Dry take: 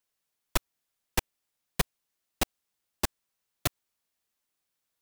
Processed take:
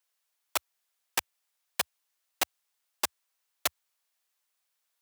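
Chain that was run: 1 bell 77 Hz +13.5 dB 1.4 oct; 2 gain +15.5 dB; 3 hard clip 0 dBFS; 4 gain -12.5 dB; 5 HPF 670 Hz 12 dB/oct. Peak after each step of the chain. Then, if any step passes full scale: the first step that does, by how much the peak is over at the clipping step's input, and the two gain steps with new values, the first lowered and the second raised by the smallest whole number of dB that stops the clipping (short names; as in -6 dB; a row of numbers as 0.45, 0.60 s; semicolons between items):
-7.5, +8.0, 0.0, -12.5, -11.0 dBFS; step 2, 8.0 dB; step 2 +7.5 dB, step 4 -4.5 dB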